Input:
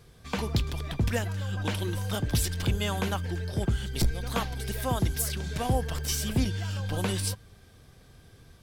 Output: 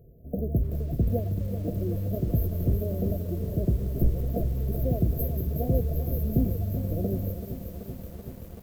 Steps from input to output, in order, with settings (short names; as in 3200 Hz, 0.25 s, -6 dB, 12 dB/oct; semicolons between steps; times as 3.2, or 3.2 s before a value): rattling part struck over -24 dBFS, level -25 dBFS; in parallel at -9 dB: sample-and-hold 30×; on the sum: brick-wall FIR band-stop 720–12000 Hz; de-hum 103.5 Hz, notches 2; on a send: thin delay 0.186 s, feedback 71%, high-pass 2000 Hz, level -8 dB; on the sum: lo-fi delay 0.382 s, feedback 80%, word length 8-bit, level -10 dB